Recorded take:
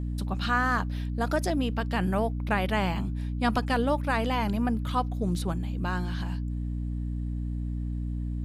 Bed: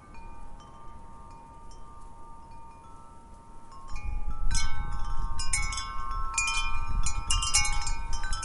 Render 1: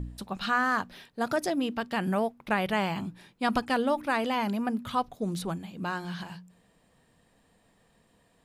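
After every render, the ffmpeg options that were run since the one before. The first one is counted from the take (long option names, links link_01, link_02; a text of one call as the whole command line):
ffmpeg -i in.wav -af "bandreject=frequency=60:width_type=h:width=4,bandreject=frequency=120:width_type=h:width=4,bandreject=frequency=180:width_type=h:width=4,bandreject=frequency=240:width_type=h:width=4,bandreject=frequency=300:width_type=h:width=4" out.wav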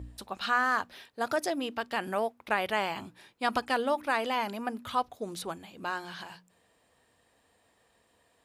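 ffmpeg -i in.wav -af "highpass=70,equalizer=frequency=170:width_type=o:width=1.1:gain=-14" out.wav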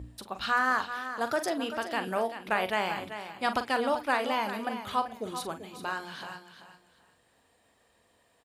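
ffmpeg -i in.wav -filter_complex "[0:a]asplit=2[link_01][link_02];[link_02]adelay=43,volume=-10dB[link_03];[link_01][link_03]amix=inputs=2:normalize=0,asplit=2[link_04][link_05];[link_05]aecho=0:1:387|774|1161:0.299|0.0657|0.0144[link_06];[link_04][link_06]amix=inputs=2:normalize=0" out.wav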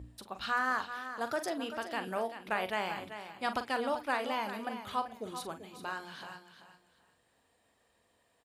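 ffmpeg -i in.wav -af "volume=-5dB" out.wav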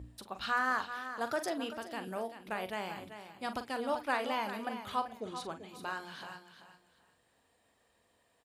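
ffmpeg -i in.wav -filter_complex "[0:a]asettb=1/sr,asplit=3[link_01][link_02][link_03];[link_01]atrim=end=1.734[link_04];[link_02]atrim=start=1.73:end=3.89,asetpts=PTS-STARTPTS,afade=type=in:duration=0.004:curve=qsin,afade=type=out:start_time=2.156:duration=0.004:curve=qsin,equalizer=frequency=1600:width=0.34:gain=-6[link_05];[link_03]atrim=start=3.886[link_06];[link_04][link_05]acrossfade=duration=0.004:curve1=hsin:curve2=qsin[link_07];[link_07][link_06]acrossfade=duration=0.004:curve1=qsin:curve2=hsin,asettb=1/sr,asplit=3[link_08][link_09][link_10];[link_08]atrim=end=5.204[link_11];[link_09]atrim=start=5.2:end=5.69,asetpts=PTS-STARTPTS,afade=type=in:duration=0.004:curve=qsin,afade=type=out:start_time=0.486:duration=0.004:curve=qsin,lowpass=7500[link_12];[link_10]atrim=start=5.686[link_13];[link_11][link_12]acrossfade=duration=0.004:curve1=hsin:curve2=qsin[link_14];[link_14][link_13]acrossfade=duration=0.004:curve1=qsin:curve2=hsin" out.wav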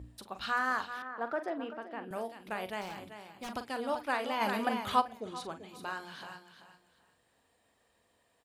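ffmpeg -i in.wav -filter_complex "[0:a]asettb=1/sr,asplit=3[link_01][link_02][link_03];[link_01]atrim=end=1.024[link_04];[link_02]atrim=start=1.02:end=2.11,asetpts=PTS-STARTPTS,afade=type=in:duration=0.004:curve=qsin,afade=type=out:start_time=1.086:duration=0.004:curve=qsin,acrossover=split=170 2400:gain=0.0891 1 0.0708[link_05][link_06][link_07];[link_05][link_06][link_07]amix=inputs=3:normalize=0[link_08];[link_03]atrim=start=2.106[link_09];[link_04][link_08]acrossfade=duration=0.004:curve1=hsin:curve2=qsin[link_10];[link_10][link_09]acrossfade=duration=0.004:curve1=qsin:curve2=hsin,asettb=1/sr,asplit=3[link_11][link_12][link_13];[link_11]atrim=end=2.814[link_14];[link_12]atrim=start=2.81:end=3.55,asetpts=PTS-STARTPTS,afade=type=in:duration=0.004:curve=qsin,afade=type=out:start_time=0.736:duration=0.004:curve=qsin,aeval=exprs='0.0168*(abs(mod(val(0)/0.0168+3,4)-2)-1)':channel_layout=same[link_15];[link_13]atrim=start=3.546[link_16];[link_14][link_15]acrossfade=duration=0.004:curve1=hsin:curve2=qsin[link_17];[link_17][link_16]acrossfade=duration=0.004:curve1=qsin:curve2=hsin,asplit=3[link_18][link_19][link_20];[link_18]afade=type=out:start_time=4.4:duration=0.02[link_21];[link_19]acontrast=76,afade=type=in:start_time=4.4:duration=0.02,afade=type=out:start_time=5:duration=0.02[link_22];[link_20]afade=type=in:start_time=5:duration=0.02[link_23];[link_21][link_22][link_23]amix=inputs=3:normalize=0" out.wav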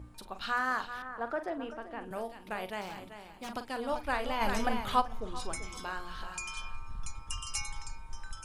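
ffmpeg -i in.wav -i bed.wav -filter_complex "[1:a]volume=-12dB[link_01];[0:a][link_01]amix=inputs=2:normalize=0" out.wav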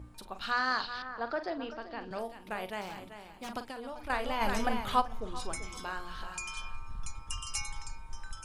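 ffmpeg -i in.wav -filter_complex "[0:a]asettb=1/sr,asplit=3[link_01][link_02][link_03];[link_01]atrim=end=0.514[link_04];[link_02]atrim=start=0.51:end=2.19,asetpts=PTS-STARTPTS,afade=type=in:duration=0.004:curve=qsin,afade=type=out:start_time=1.676:duration=0.004:curve=qsin,lowpass=frequency=4600:width_type=q:width=7.1[link_05];[link_03]atrim=start=2.186[link_06];[link_04][link_05]acrossfade=duration=0.004:curve1=hsin:curve2=qsin[link_07];[link_07][link_06]acrossfade=duration=0.004:curve1=qsin:curve2=hsin,asettb=1/sr,asplit=3[link_08][link_09][link_10];[link_08]atrim=end=3.704[link_11];[link_09]atrim=start=3.7:end=4.1,asetpts=PTS-STARTPTS,afade=type=in:duration=0.004:curve=qsin,afade=type=out:start_time=0.396:duration=0.004:curve=qsin,acompressor=threshold=-37dB:ratio=12:attack=3.2:release=140:knee=1:detection=peak[link_12];[link_10]atrim=start=4.096[link_13];[link_11][link_12]acrossfade=duration=0.004:curve1=hsin:curve2=qsin[link_14];[link_14][link_13]acrossfade=duration=0.004:curve1=qsin:curve2=hsin" out.wav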